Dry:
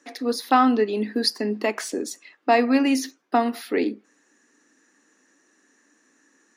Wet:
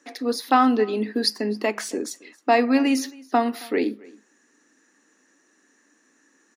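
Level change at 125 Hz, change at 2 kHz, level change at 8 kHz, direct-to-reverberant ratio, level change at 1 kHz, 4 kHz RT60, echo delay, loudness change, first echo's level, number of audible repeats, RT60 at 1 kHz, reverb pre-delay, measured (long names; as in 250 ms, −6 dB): can't be measured, 0.0 dB, 0.0 dB, no reverb audible, 0.0 dB, no reverb audible, 271 ms, 0.0 dB, −23.5 dB, 1, no reverb audible, no reverb audible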